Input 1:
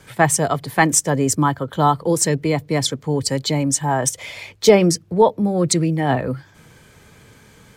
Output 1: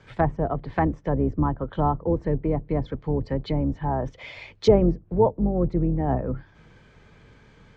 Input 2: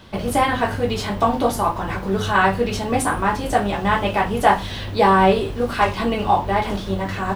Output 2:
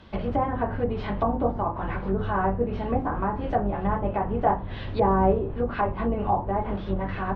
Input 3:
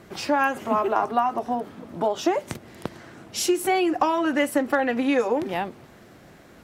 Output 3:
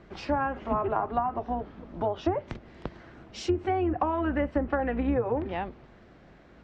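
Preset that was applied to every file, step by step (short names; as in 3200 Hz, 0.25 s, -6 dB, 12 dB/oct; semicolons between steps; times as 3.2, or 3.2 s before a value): octaver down 2 oct, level -3 dB; Gaussian blur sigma 1.8 samples; treble ducked by the level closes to 890 Hz, closed at -15.5 dBFS; gain -5 dB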